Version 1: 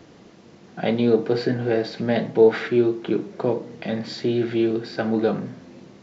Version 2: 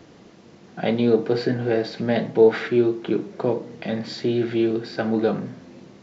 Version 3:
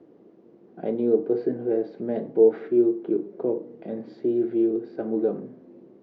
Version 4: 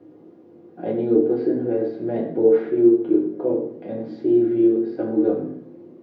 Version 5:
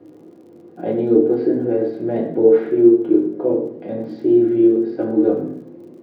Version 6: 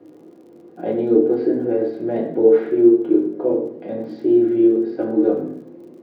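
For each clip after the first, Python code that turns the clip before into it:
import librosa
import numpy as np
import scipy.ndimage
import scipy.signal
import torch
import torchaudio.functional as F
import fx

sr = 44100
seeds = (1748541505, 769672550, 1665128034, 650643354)

y1 = x
y2 = fx.bandpass_q(y1, sr, hz=370.0, q=2.0)
y3 = fx.rev_fdn(y2, sr, rt60_s=0.62, lf_ratio=1.35, hf_ratio=0.85, size_ms=57.0, drr_db=-2.5)
y4 = fx.dmg_crackle(y3, sr, seeds[0], per_s=41.0, level_db=-48.0)
y4 = y4 * librosa.db_to_amplitude(3.5)
y5 = fx.highpass(y4, sr, hz=180.0, slope=6)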